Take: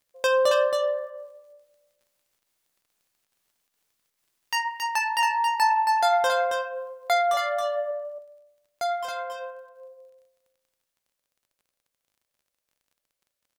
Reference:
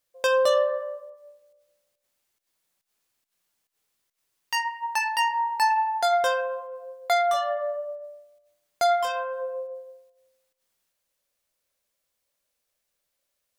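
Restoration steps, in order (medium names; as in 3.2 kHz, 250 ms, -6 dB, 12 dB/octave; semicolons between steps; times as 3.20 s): de-click; inverse comb 273 ms -5 dB; trim 0 dB, from 7.91 s +6 dB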